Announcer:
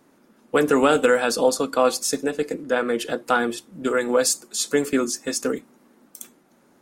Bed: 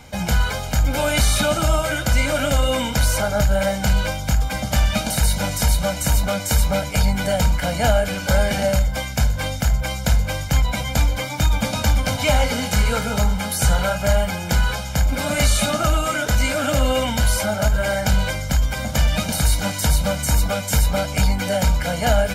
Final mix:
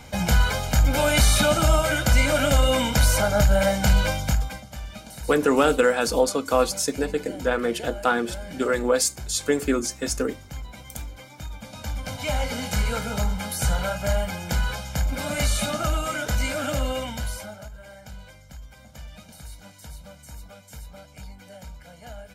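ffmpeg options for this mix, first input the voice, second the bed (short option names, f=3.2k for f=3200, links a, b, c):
-filter_complex "[0:a]adelay=4750,volume=-1.5dB[a];[1:a]volume=12dB,afade=t=out:st=4.18:d=0.46:silence=0.125893,afade=t=in:st=11.66:d=1.03:silence=0.237137,afade=t=out:st=16.64:d=1.05:silence=0.133352[b];[a][b]amix=inputs=2:normalize=0"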